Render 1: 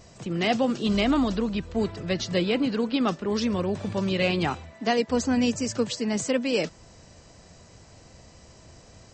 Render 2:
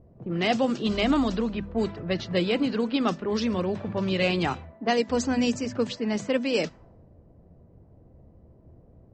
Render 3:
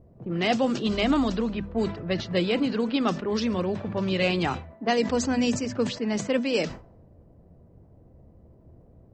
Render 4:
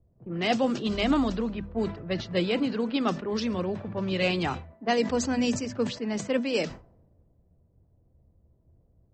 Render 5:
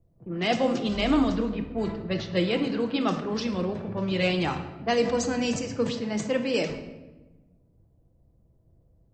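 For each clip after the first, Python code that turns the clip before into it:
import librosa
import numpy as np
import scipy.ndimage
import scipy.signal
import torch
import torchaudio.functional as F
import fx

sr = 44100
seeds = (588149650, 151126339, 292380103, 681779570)

y1 = fx.hum_notches(x, sr, base_hz=50, count=5)
y1 = fx.env_lowpass(y1, sr, base_hz=380.0, full_db=-19.5)
y2 = fx.sustainer(y1, sr, db_per_s=120.0)
y3 = fx.band_widen(y2, sr, depth_pct=40)
y3 = y3 * 10.0 ** (-2.0 / 20.0)
y4 = fx.room_shoebox(y3, sr, seeds[0], volume_m3=620.0, walls='mixed', distance_m=0.71)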